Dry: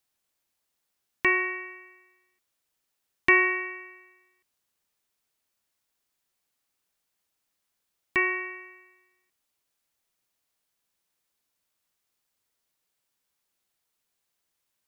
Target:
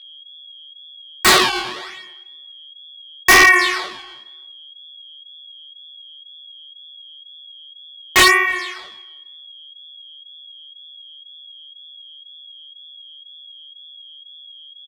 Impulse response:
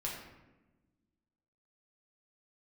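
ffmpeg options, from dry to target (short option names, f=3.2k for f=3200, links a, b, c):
-filter_complex "[0:a]agate=range=-33dB:threshold=-57dB:ratio=3:detection=peak,equalizer=f=3.2k:w=0.83:g=-11,acrossover=split=2200[a][b];[b]acompressor=threshold=-52dB:ratio=5[c];[a][c]amix=inputs=2:normalize=0,acrusher=samples=13:mix=1:aa=0.000001:lfo=1:lforange=20.8:lforate=0.8,aeval=exprs='val(0)+0.000501*sin(2*PI*3300*n/s)':c=same,bandpass=f=3.2k:t=q:w=0.72:csg=0,adynamicsmooth=sensitivity=4:basefreq=4.3k,apsyclip=28.5dB,aexciter=amount=1.8:drive=5.5:freq=3.7k,flanger=delay=17.5:depth=7.8:speed=2,aeval=exprs='0.447*(abs(mod(val(0)/0.447+3,4)-2)-1)':c=same,asplit=2[d][e];[e]adelay=314,lowpass=f=2.5k:p=1,volume=-23dB,asplit=2[f][g];[g]adelay=314,lowpass=f=2.5k:p=1,volume=0.21[h];[d][f][h]amix=inputs=3:normalize=0,volume=3.5dB"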